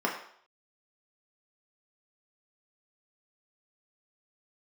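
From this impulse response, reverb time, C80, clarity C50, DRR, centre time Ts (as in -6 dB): 0.60 s, 9.5 dB, 7.0 dB, -2.0 dB, 27 ms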